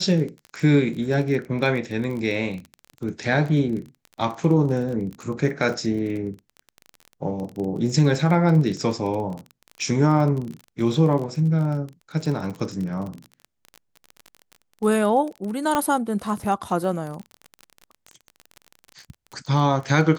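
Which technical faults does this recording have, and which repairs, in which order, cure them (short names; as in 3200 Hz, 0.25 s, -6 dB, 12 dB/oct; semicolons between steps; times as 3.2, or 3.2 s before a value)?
crackle 26/s -29 dBFS
15.75 pop -8 dBFS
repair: de-click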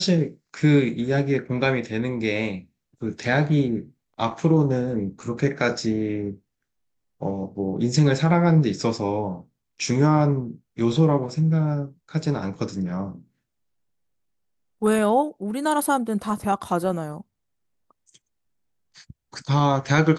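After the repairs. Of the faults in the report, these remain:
none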